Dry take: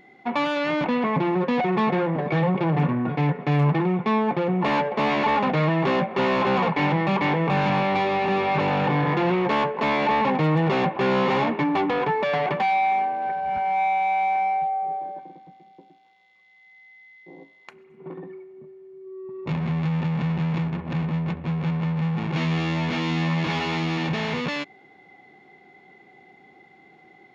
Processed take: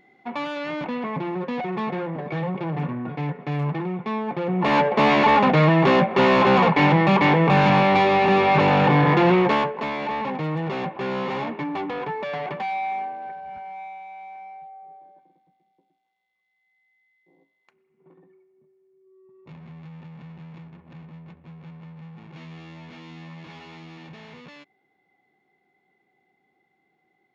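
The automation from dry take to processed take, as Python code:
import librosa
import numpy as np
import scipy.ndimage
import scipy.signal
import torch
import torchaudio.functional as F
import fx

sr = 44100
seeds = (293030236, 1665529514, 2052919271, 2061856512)

y = fx.gain(x, sr, db=fx.line((4.26, -5.5), (4.84, 5.0), (9.4, 5.0), (9.91, -6.0), (13.07, -6.0), (14.07, -17.5)))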